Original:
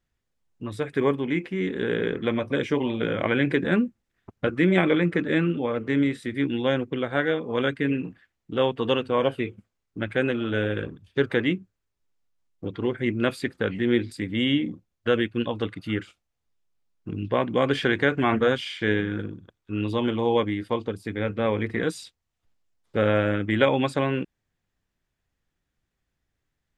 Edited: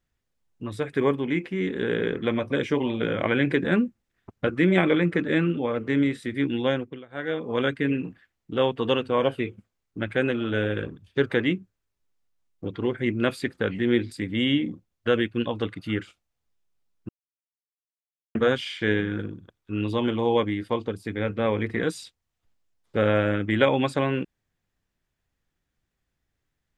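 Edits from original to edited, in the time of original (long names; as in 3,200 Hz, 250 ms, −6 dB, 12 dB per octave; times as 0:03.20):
0:06.67–0:07.46: duck −21 dB, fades 0.38 s
0:17.09–0:18.35: silence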